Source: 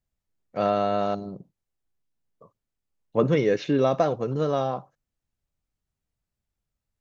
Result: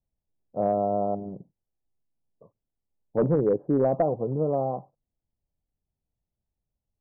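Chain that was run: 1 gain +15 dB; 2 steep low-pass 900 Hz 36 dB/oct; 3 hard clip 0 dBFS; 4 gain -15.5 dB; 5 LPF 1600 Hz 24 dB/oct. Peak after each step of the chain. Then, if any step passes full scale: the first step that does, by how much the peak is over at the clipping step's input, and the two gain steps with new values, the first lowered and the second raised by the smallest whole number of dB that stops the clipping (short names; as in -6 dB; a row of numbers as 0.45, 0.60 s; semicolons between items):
+6.5, +6.0, 0.0, -15.5, -14.5 dBFS; step 1, 6.0 dB; step 1 +9 dB, step 4 -9.5 dB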